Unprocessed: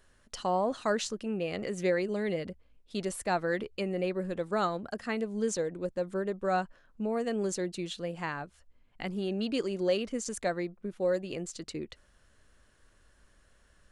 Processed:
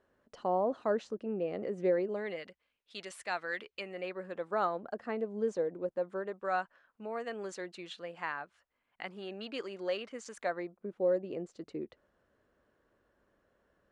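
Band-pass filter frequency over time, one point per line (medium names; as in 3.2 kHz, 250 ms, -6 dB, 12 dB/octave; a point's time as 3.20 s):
band-pass filter, Q 0.78
2.00 s 460 Hz
2.48 s 2.3 kHz
3.63 s 2.3 kHz
5.04 s 560 Hz
5.74 s 560 Hz
6.52 s 1.4 kHz
10.35 s 1.4 kHz
10.98 s 460 Hz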